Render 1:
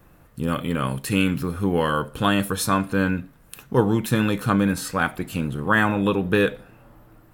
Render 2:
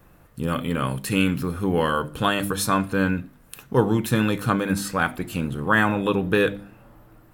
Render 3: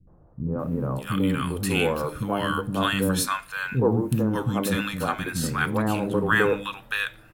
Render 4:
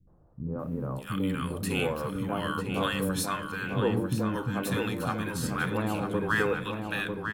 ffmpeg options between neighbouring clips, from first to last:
-af "bandreject=f=50.02:t=h:w=4,bandreject=f=100.04:t=h:w=4,bandreject=f=150.06:t=h:w=4,bandreject=f=200.08:t=h:w=4,bandreject=f=250.1:t=h:w=4,bandreject=f=300.12:t=h:w=4,bandreject=f=350.14:t=h:w=4"
-filter_complex "[0:a]acrossover=split=270|980[a][b][c];[b]adelay=70[d];[c]adelay=590[e];[a][d][e]amix=inputs=3:normalize=0"
-filter_complex "[0:a]asplit=2[a][b];[b]adelay=947,lowpass=f=3.2k:p=1,volume=-5.5dB,asplit=2[c][d];[d]adelay=947,lowpass=f=3.2k:p=1,volume=0.51,asplit=2[e][f];[f]adelay=947,lowpass=f=3.2k:p=1,volume=0.51,asplit=2[g][h];[h]adelay=947,lowpass=f=3.2k:p=1,volume=0.51,asplit=2[i][j];[j]adelay=947,lowpass=f=3.2k:p=1,volume=0.51,asplit=2[k][l];[l]adelay=947,lowpass=f=3.2k:p=1,volume=0.51[m];[a][c][e][g][i][k][m]amix=inputs=7:normalize=0,volume=-6dB"

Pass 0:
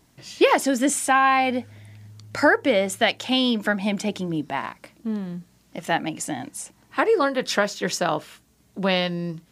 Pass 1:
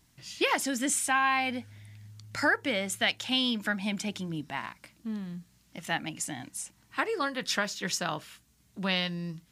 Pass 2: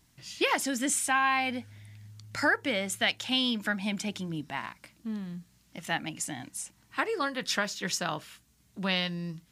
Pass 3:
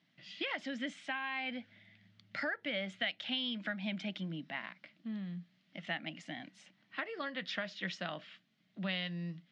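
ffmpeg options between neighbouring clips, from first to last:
-af "equalizer=f=490:w=0.61:g=-10.5,volume=-3dB"
-af anull
-af "acompressor=threshold=-30dB:ratio=4,highpass=f=160:w=0.5412,highpass=f=160:w=1.3066,equalizer=f=180:t=q:w=4:g=5,equalizer=f=420:t=q:w=4:g=-7,equalizer=f=620:t=q:w=4:g=6,equalizer=f=950:t=q:w=4:g=-8,equalizer=f=2k:t=q:w=4:g=6,equalizer=f=3.2k:t=q:w=4:g=5,lowpass=f=4.2k:w=0.5412,lowpass=f=4.2k:w=1.3066,volume=-6dB"

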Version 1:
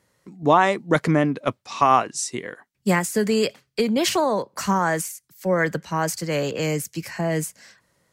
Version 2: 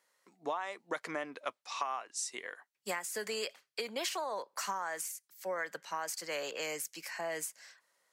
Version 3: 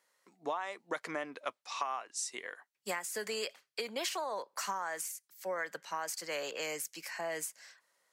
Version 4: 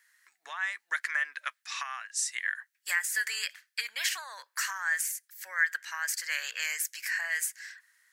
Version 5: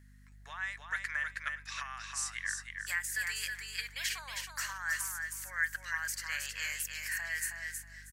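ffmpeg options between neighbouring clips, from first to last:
-af "highpass=680,acompressor=threshold=-26dB:ratio=12,volume=-6.5dB"
-af anull
-af "highpass=f=1.7k:t=q:w=5.6,highshelf=f=5.1k:g=9.5"
-af "aeval=exprs='val(0)+0.00282*(sin(2*PI*50*n/s)+sin(2*PI*2*50*n/s)/2+sin(2*PI*3*50*n/s)/3+sin(2*PI*4*50*n/s)/4+sin(2*PI*5*50*n/s)/5)':c=same,aecho=1:1:318|636|954:0.562|0.118|0.0248,volume=-5.5dB"

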